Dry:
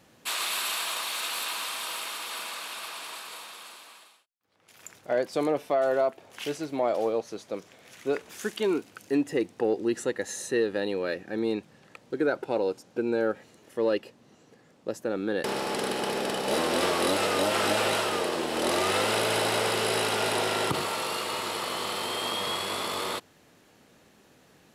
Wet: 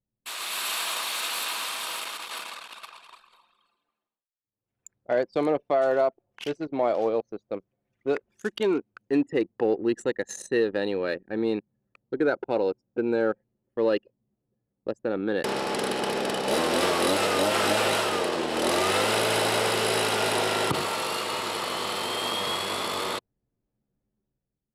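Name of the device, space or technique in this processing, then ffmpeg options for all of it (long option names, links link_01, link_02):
voice memo with heavy noise removal: -af "anlmdn=3.98,dynaudnorm=framelen=100:gausssize=11:maxgain=8.5dB,volume=-6.5dB"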